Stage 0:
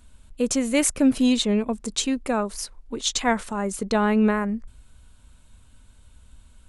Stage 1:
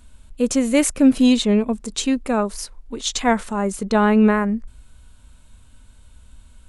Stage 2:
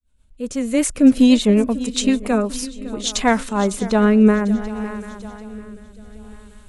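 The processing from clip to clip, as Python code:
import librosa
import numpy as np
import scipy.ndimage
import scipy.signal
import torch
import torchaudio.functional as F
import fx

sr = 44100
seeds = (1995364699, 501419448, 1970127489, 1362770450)

y1 = fx.hpss(x, sr, part='harmonic', gain_db=5)
y2 = fx.fade_in_head(y1, sr, length_s=1.22)
y2 = fx.echo_swing(y2, sr, ms=742, ratio=3, feedback_pct=40, wet_db=-16)
y2 = fx.rotary_switch(y2, sr, hz=8.0, then_hz=0.65, switch_at_s=1.88)
y2 = y2 * librosa.db_to_amplitude(4.0)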